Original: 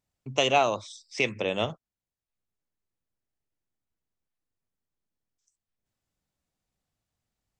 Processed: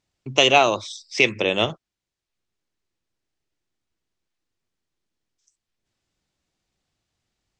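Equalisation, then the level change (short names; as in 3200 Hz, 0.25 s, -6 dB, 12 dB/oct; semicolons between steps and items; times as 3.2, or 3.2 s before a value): air absorption 95 m; bell 350 Hz +6 dB 0.44 oct; high shelf 2200 Hz +11 dB; +4.5 dB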